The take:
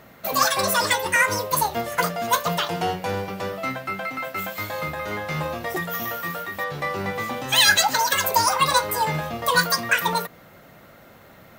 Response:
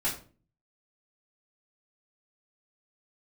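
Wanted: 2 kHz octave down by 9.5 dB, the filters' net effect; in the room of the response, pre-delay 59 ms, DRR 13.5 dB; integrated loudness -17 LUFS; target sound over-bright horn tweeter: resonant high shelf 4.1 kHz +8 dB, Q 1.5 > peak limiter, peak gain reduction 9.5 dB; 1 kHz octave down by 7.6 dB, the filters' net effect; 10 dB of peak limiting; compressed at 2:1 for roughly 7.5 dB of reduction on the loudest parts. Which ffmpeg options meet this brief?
-filter_complex "[0:a]equalizer=f=1000:t=o:g=-6.5,equalizer=f=2000:t=o:g=-8.5,acompressor=threshold=0.0355:ratio=2,alimiter=limit=0.0708:level=0:latency=1,asplit=2[s0][s1];[1:a]atrim=start_sample=2205,adelay=59[s2];[s1][s2]afir=irnorm=-1:irlink=0,volume=0.0944[s3];[s0][s3]amix=inputs=2:normalize=0,highshelf=f=4100:t=q:w=1.5:g=8,volume=5.96,alimiter=limit=0.376:level=0:latency=1"

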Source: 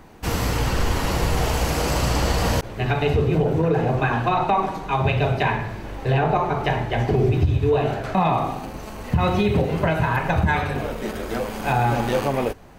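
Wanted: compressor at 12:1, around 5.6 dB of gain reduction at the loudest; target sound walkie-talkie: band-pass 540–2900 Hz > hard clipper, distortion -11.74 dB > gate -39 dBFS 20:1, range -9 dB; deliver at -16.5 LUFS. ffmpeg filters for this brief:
-af "acompressor=threshold=0.1:ratio=12,highpass=540,lowpass=2900,asoftclip=type=hard:threshold=0.0501,agate=range=0.355:threshold=0.0112:ratio=20,volume=5.96"

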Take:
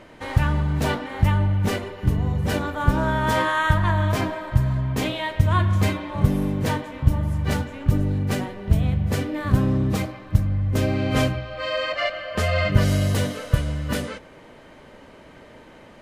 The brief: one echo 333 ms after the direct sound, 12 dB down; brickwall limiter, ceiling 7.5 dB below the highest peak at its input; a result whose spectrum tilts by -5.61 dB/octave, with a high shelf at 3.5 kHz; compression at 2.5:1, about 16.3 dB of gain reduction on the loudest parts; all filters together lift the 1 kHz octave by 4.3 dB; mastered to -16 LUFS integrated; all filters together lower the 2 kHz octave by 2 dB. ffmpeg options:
-af "equalizer=f=1000:t=o:g=6,equalizer=f=2000:t=o:g=-6,highshelf=f=3500:g=3,acompressor=threshold=0.0141:ratio=2.5,alimiter=level_in=1.33:limit=0.0631:level=0:latency=1,volume=0.75,aecho=1:1:333:0.251,volume=10.6"

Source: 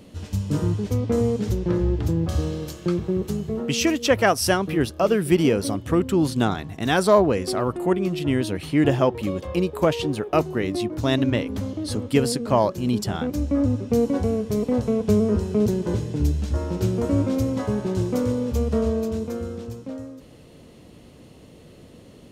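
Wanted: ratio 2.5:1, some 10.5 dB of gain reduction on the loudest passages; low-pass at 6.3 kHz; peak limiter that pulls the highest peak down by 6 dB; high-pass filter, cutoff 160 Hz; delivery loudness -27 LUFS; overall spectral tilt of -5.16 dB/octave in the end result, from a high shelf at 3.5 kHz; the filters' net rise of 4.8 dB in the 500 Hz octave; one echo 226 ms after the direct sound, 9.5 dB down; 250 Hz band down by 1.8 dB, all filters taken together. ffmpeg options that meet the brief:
-af "highpass=160,lowpass=6300,equalizer=f=250:t=o:g=-4,equalizer=f=500:t=o:g=7,highshelf=f=3500:g=4.5,acompressor=threshold=0.0631:ratio=2.5,alimiter=limit=0.15:level=0:latency=1,aecho=1:1:226:0.335,volume=1.06"

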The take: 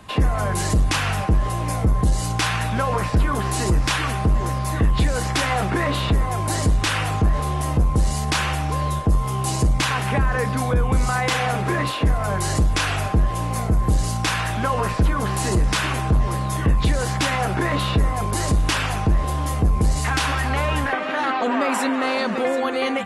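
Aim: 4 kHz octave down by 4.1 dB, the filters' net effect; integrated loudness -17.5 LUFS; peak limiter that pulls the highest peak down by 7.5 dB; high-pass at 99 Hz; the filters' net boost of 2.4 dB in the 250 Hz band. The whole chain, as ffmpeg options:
-af "highpass=99,equalizer=f=250:t=o:g=3.5,equalizer=f=4000:t=o:g=-5.5,volume=2.11,alimiter=limit=0.422:level=0:latency=1"

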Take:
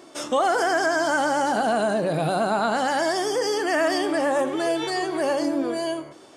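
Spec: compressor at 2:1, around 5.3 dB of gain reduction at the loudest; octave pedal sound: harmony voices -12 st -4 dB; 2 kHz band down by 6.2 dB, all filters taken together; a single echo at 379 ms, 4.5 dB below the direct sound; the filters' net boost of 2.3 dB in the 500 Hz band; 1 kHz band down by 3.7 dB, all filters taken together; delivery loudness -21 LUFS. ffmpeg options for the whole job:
-filter_complex "[0:a]equalizer=f=500:t=o:g=6.5,equalizer=f=1000:t=o:g=-8.5,equalizer=f=2000:t=o:g=-5,acompressor=threshold=0.0501:ratio=2,aecho=1:1:379:0.596,asplit=2[s0][s1];[s1]asetrate=22050,aresample=44100,atempo=2,volume=0.631[s2];[s0][s2]amix=inputs=2:normalize=0,volume=1.41"

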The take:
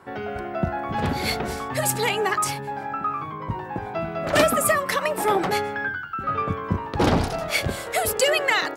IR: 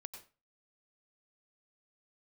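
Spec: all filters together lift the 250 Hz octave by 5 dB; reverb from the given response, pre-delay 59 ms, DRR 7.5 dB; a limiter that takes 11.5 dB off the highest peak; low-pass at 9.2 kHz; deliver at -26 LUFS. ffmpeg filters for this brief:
-filter_complex "[0:a]lowpass=9200,equalizer=f=250:t=o:g=6.5,alimiter=limit=0.158:level=0:latency=1,asplit=2[s0][s1];[1:a]atrim=start_sample=2205,adelay=59[s2];[s1][s2]afir=irnorm=-1:irlink=0,volume=0.708[s3];[s0][s3]amix=inputs=2:normalize=0,volume=0.944"

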